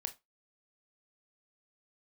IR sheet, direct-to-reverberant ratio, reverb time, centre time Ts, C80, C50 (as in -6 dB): 8.0 dB, 0.20 s, 5 ms, 26.0 dB, 16.5 dB